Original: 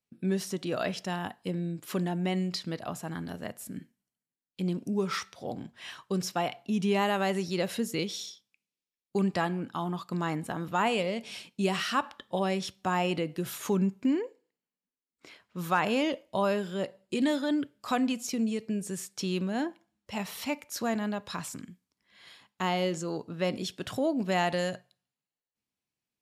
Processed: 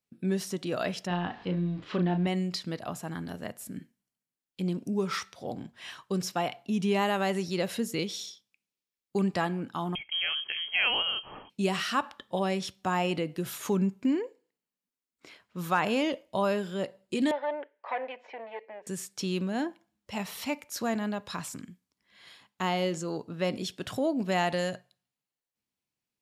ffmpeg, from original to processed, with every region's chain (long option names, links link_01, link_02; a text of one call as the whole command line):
ffmpeg -i in.wav -filter_complex "[0:a]asettb=1/sr,asplit=3[link_01][link_02][link_03];[link_01]atrim=end=1.074[link_04];[link_02]atrim=start=1.07:end=2.27,asetpts=PTS-STARTPTS,afade=type=in:duration=0.004:curve=qsin,afade=type=out:start_time=1.196:duration=0.004:curve=qsin,aeval=exprs='val(0)+0.5*0.00531*sgn(val(0))':channel_layout=same,lowpass=frequency=4000:width=0.5412,lowpass=frequency=4000:width=1.3066,asplit=2[link_05][link_06];[link_06]adelay=34,volume=-5.5dB[link_07];[link_05][link_07]amix=inputs=2:normalize=0,atrim=end_sample=52920[link_08];[link_03]atrim=start=2.266[link_09];[link_04][link_08]acrossfade=duration=0.004:curve1=hsin:curve2=qsin[link_10];[link_10][link_09]acrossfade=duration=0.004:curve1=qsin:curve2=hsin,asettb=1/sr,asplit=3[link_11][link_12][link_13];[link_11]atrim=end=9.954[link_14];[link_12]atrim=start=9.95:end=11.5,asetpts=PTS-STARTPTS,afade=type=in:duration=0.004:curve=qsin,afade=type=out:start_time=1.546:duration=0.004:curve=qsin,lowpass=frequency=2900:width_type=q:width=0.5098,lowpass=frequency=2900:width_type=q:width=0.6013,lowpass=frequency=2900:width_type=q:width=0.9,lowpass=frequency=2900:width_type=q:width=2.563,afreqshift=-3400,lowshelf=frequency=280:gain=7[link_15];[link_13]atrim=start=11.496[link_16];[link_14][link_15]acrossfade=duration=0.004:curve1=hsin:curve2=qsin[link_17];[link_17][link_16]acrossfade=duration=0.004:curve1=qsin:curve2=hsin,asettb=1/sr,asplit=3[link_18][link_19][link_20];[link_18]atrim=end=17.314[link_21];[link_19]atrim=start=17.31:end=18.87,asetpts=PTS-STARTPTS,afade=type=in:duration=0.004:curve=qsin,afade=type=out:start_time=1.556:duration=0.004:curve=qsin,aeval=exprs='clip(val(0),-1,0.0211)':channel_layout=same,highpass=frequency=480:width=0.5412,highpass=frequency=480:width=1.3066,equalizer=frequency=550:width_type=q:width=4:gain=6,equalizer=frequency=900:width_type=q:width=4:gain=7,equalizer=frequency=1300:width_type=q:width=4:gain=-9,equalizer=frequency=1900:width_type=q:width=4:gain=7,lowpass=frequency=2400:width=0.5412,lowpass=frequency=2400:width=1.3066[link_22];[link_20]atrim=start=18.866[link_23];[link_21][link_22]acrossfade=duration=0.004:curve1=hsin:curve2=qsin[link_24];[link_24][link_23]acrossfade=duration=0.004:curve1=qsin:curve2=hsin" out.wav